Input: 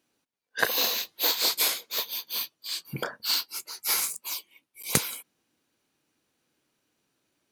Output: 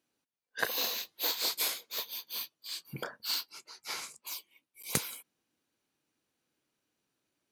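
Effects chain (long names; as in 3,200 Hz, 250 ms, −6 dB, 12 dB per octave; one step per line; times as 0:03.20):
0:03.49–0:04.27: high-frequency loss of the air 77 metres
level −7 dB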